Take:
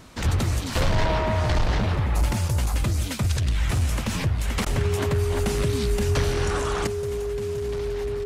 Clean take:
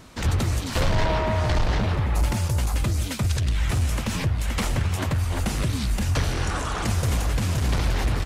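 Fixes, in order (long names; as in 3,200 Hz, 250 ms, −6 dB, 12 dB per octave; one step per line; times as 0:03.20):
notch filter 410 Hz, Q 30
repair the gap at 0:04.65, 11 ms
level 0 dB, from 0:06.87 +10.5 dB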